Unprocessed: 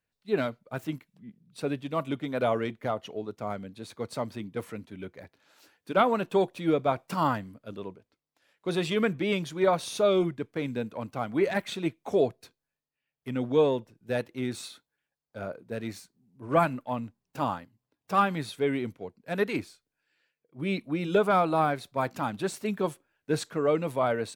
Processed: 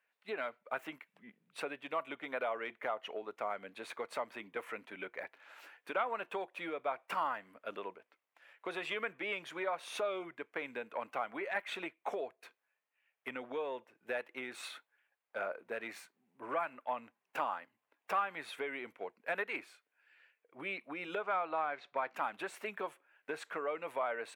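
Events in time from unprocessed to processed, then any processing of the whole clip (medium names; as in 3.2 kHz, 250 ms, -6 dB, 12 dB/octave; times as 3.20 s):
21.21–22.14 s: low-pass 5.8 kHz 24 dB/octave
whole clip: resonant high shelf 3.3 kHz -10.5 dB, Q 1.5; compression 6:1, threshold -37 dBFS; high-pass 660 Hz 12 dB/octave; trim +7 dB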